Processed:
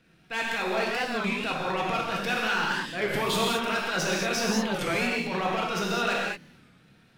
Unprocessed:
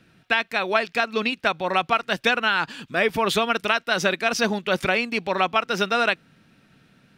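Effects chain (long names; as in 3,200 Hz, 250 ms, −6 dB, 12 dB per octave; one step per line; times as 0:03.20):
gain on one half-wave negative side −3 dB
transient designer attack −9 dB, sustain +6 dB
hard clipping −18.5 dBFS, distortion −16 dB
reverb whose tail is shaped and stops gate 250 ms flat, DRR −4 dB
wow of a warped record 33 1/3 rpm, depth 160 cents
level −6 dB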